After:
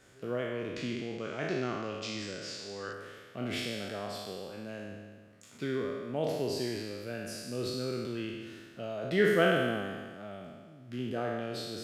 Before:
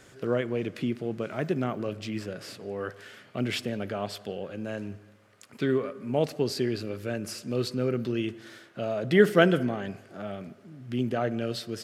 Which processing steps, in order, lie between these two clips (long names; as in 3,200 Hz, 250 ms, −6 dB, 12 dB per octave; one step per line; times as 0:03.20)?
peak hold with a decay on every bin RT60 1.59 s
0:00.76–0:02.93: drawn EQ curve 660 Hz 0 dB, 6,900 Hz +9 dB, 11,000 Hz −11 dB
level −9 dB